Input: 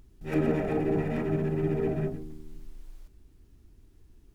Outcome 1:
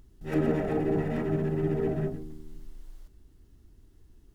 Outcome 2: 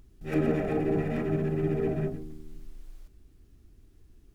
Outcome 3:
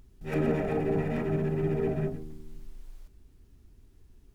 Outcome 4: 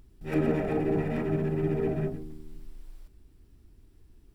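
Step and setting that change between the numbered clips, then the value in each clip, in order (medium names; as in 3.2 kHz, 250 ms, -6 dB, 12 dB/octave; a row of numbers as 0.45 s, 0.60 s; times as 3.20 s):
band-stop, frequency: 2.4 kHz, 920 Hz, 320 Hz, 6.5 kHz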